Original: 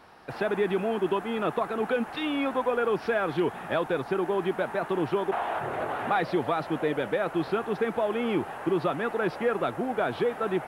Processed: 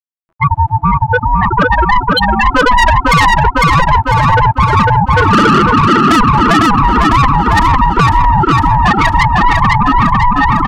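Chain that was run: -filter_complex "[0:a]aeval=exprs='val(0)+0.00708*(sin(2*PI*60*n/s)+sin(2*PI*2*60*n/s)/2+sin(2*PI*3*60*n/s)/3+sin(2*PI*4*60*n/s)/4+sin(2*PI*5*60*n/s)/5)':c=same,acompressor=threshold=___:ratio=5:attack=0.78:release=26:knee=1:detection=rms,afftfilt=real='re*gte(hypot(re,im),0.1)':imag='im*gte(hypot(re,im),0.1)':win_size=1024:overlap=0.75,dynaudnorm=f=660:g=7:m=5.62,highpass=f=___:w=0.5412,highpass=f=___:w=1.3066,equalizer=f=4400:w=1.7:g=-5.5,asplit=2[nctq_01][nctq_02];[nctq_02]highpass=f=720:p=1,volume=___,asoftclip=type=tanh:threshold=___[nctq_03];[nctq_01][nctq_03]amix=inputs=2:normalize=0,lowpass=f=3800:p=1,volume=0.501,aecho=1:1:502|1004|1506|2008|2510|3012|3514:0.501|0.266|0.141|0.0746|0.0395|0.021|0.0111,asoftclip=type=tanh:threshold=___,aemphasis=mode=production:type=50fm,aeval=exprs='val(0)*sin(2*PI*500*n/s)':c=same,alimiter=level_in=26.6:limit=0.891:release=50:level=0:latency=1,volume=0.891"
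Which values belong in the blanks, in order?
0.0316, 500, 500, 8.91, 0.211, 0.158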